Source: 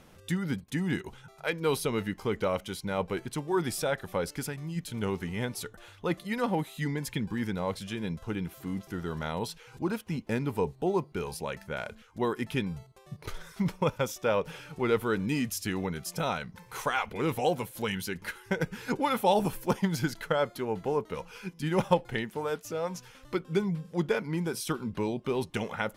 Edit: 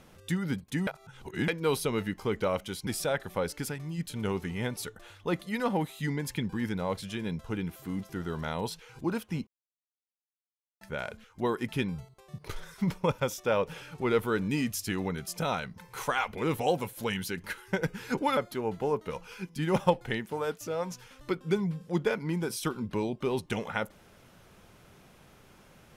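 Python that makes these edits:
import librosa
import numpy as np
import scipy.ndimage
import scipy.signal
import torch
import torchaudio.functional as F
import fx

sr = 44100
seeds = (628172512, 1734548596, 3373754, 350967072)

y = fx.edit(x, sr, fx.reverse_span(start_s=0.87, length_s=0.61),
    fx.cut(start_s=2.87, length_s=0.78),
    fx.silence(start_s=10.25, length_s=1.34),
    fx.cut(start_s=19.15, length_s=1.26), tone=tone)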